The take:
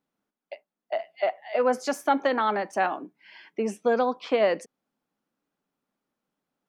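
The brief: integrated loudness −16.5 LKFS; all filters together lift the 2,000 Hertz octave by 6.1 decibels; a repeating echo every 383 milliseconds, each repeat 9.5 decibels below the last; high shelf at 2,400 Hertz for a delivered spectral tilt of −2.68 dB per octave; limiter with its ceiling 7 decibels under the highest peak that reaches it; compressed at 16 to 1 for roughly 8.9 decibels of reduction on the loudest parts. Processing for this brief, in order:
parametric band 2,000 Hz +5.5 dB
high-shelf EQ 2,400 Hz +4.5 dB
downward compressor 16 to 1, threshold −25 dBFS
brickwall limiter −21 dBFS
repeating echo 383 ms, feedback 33%, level −9.5 dB
level +17 dB

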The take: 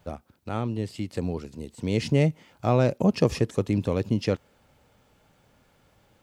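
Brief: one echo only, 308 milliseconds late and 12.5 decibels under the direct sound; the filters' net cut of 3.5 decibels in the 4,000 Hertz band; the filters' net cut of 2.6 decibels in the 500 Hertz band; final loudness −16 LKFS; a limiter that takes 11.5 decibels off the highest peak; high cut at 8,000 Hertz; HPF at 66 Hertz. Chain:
high-pass filter 66 Hz
low-pass filter 8,000 Hz
parametric band 500 Hz −3 dB
parametric band 4,000 Hz −4.5 dB
brickwall limiter −19.5 dBFS
single-tap delay 308 ms −12.5 dB
level +16.5 dB

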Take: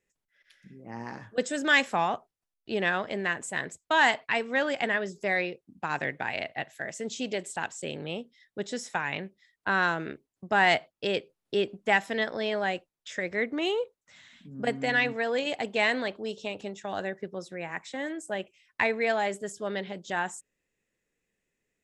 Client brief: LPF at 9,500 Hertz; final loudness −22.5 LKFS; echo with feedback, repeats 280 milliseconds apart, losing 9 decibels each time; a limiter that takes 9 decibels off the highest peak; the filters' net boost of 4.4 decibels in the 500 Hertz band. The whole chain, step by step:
low-pass filter 9,500 Hz
parametric band 500 Hz +5.5 dB
brickwall limiter −18 dBFS
repeating echo 280 ms, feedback 35%, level −9 dB
level +7.5 dB

